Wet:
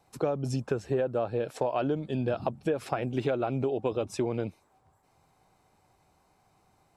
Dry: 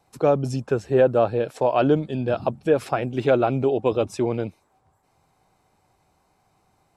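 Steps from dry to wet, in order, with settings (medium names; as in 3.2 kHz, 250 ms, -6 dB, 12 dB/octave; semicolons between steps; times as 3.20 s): compression 10:1, threshold -23 dBFS, peak gain reduction 11.5 dB; trim -1.5 dB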